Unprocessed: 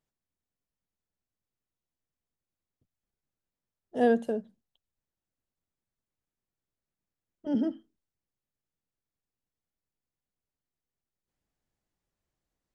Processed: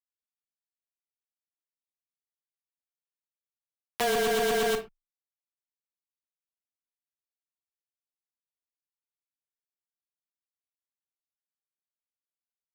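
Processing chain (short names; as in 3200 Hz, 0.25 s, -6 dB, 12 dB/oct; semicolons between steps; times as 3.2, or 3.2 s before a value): zero-crossing step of -38.5 dBFS; HPF 200 Hz 12 dB/oct; fixed phaser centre 1300 Hz, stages 4; LFO high-pass saw down 0.96 Hz 440–2200 Hz; bit-crush 5-bit; frequency shift -18 Hz; feedback echo 0.119 s, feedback 42%, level -6 dB; reverb, pre-delay 31 ms, DRR 10.5 dB; fast leveller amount 100%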